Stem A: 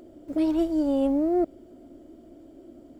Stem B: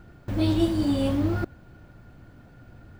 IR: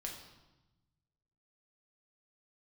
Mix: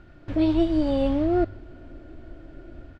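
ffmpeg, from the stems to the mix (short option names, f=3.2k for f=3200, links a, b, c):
-filter_complex "[0:a]asubboost=boost=12:cutoff=72,dynaudnorm=f=190:g=3:m=13dB,volume=-9.5dB[a];[1:a]equalizer=f=310:w=0.34:g=-13,acompressor=threshold=-33dB:ratio=6,acrusher=bits=11:mix=0:aa=0.000001,volume=-1,adelay=0.3,volume=2dB,asplit=2[b][c];[c]volume=-6dB[d];[2:a]atrim=start_sample=2205[e];[d][e]afir=irnorm=-1:irlink=0[f];[a][b][f]amix=inputs=3:normalize=0,lowpass=3.5k"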